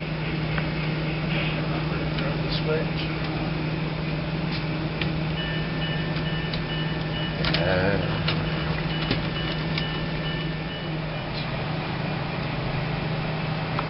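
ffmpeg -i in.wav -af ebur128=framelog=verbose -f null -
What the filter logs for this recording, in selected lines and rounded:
Integrated loudness:
  I:         -26.7 LUFS
  Threshold: -36.7 LUFS
Loudness range:
  LRA:         3.1 LU
  Threshold: -46.6 LUFS
  LRA low:   -28.3 LUFS
  LRA high:  -25.2 LUFS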